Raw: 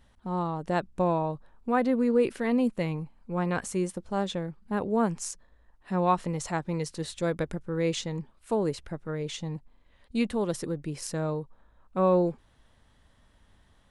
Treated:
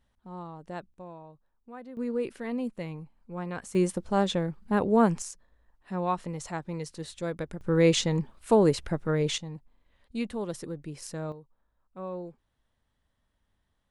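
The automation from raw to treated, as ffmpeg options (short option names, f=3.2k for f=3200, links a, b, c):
-af "asetnsamples=n=441:p=0,asendcmd='0.94 volume volume -19dB;1.97 volume volume -7dB;3.75 volume volume 4dB;5.22 volume volume -4.5dB;7.61 volume volume 6.5dB;9.38 volume volume -5dB;11.32 volume volume -14.5dB',volume=-11dB"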